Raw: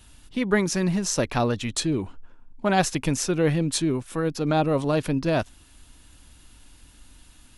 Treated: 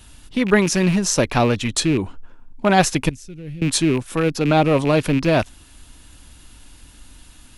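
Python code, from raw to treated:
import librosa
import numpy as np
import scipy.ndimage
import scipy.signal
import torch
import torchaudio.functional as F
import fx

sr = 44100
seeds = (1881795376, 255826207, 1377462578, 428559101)

y = fx.rattle_buzz(x, sr, strikes_db=-29.0, level_db=-25.0)
y = fx.tone_stack(y, sr, knobs='10-0-1', at=(3.09, 3.62))
y = y * 10.0 ** (6.0 / 20.0)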